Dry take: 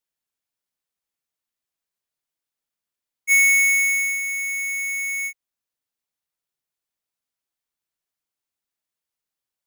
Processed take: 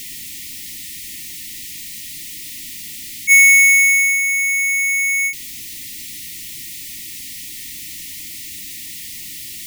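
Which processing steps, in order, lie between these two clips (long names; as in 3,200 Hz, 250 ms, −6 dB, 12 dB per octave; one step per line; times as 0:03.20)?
converter with a step at zero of −30.5 dBFS
brick-wall band-stop 350–1,800 Hz
level +6 dB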